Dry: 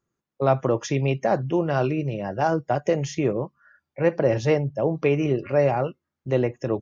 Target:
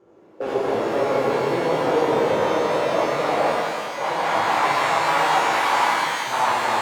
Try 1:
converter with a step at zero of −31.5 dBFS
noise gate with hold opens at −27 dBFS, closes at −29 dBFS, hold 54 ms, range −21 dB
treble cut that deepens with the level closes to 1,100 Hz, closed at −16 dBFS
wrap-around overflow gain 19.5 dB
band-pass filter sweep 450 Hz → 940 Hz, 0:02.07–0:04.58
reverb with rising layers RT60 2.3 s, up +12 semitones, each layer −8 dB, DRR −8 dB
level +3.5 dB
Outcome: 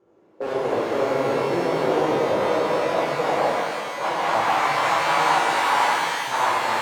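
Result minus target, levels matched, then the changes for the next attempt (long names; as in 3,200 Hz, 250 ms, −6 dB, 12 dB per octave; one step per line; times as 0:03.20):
converter with a step at zero: distortion −5 dB
change: converter with a step at zero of −25.5 dBFS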